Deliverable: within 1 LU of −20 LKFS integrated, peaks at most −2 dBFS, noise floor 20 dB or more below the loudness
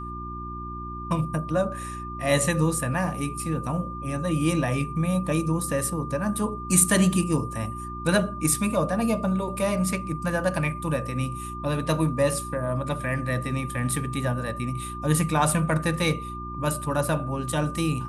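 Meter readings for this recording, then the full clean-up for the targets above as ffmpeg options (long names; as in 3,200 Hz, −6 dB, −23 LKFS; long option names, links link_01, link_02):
mains hum 60 Hz; hum harmonics up to 360 Hz; level of the hum −34 dBFS; interfering tone 1,200 Hz; level of the tone −35 dBFS; integrated loudness −26.0 LKFS; sample peak −4.5 dBFS; target loudness −20.0 LKFS
→ -af "bandreject=frequency=60:width_type=h:width=4,bandreject=frequency=120:width_type=h:width=4,bandreject=frequency=180:width_type=h:width=4,bandreject=frequency=240:width_type=h:width=4,bandreject=frequency=300:width_type=h:width=4,bandreject=frequency=360:width_type=h:width=4"
-af "bandreject=frequency=1200:width=30"
-af "volume=6dB,alimiter=limit=-2dB:level=0:latency=1"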